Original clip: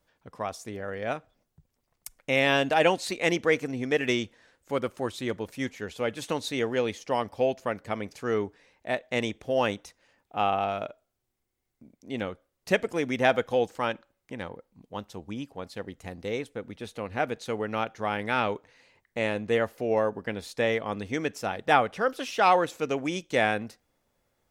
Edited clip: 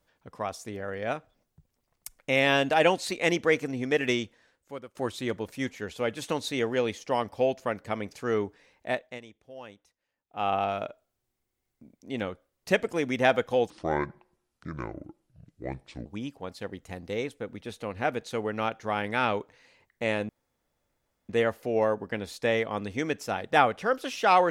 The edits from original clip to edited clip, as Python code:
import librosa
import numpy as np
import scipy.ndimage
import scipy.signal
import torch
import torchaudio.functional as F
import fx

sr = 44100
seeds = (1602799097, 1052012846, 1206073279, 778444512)

y = fx.edit(x, sr, fx.fade_out_to(start_s=4.07, length_s=0.88, floor_db=-21.5),
    fx.fade_down_up(start_s=8.92, length_s=1.62, db=-19.0, fade_s=0.28),
    fx.speed_span(start_s=13.7, length_s=1.51, speed=0.64),
    fx.insert_room_tone(at_s=19.44, length_s=1.0), tone=tone)